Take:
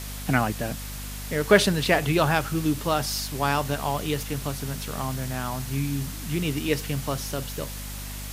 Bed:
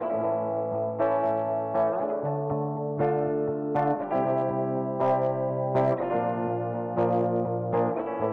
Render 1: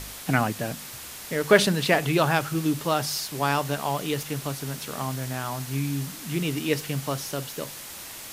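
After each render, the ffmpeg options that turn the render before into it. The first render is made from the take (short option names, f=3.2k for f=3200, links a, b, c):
-af "bandreject=f=50:t=h:w=4,bandreject=f=100:t=h:w=4,bandreject=f=150:t=h:w=4,bandreject=f=200:t=h:w=4,bandreject=f=250:t=h:w=4"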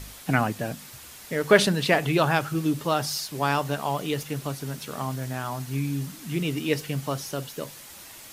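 -af "afftdn=nr=6:nf=-40"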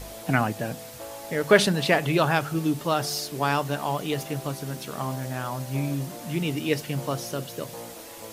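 -filter_complex "[1:a]volume=-15.5dB[a];[0:a][a]amix=inputs=2:normalize=0"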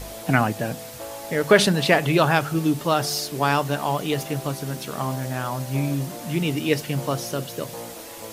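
-af "volume=3.5dB,alimiter=limit=-2dB:level=0:latency=1"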